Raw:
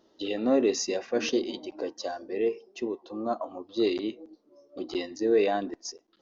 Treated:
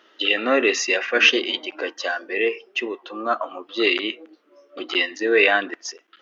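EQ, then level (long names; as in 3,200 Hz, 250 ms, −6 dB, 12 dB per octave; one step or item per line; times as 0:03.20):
high-pass filter 350 Hz 12 dB per octave
flat-topped bell 2,000 Hz +15.5 dB
+5.5 dB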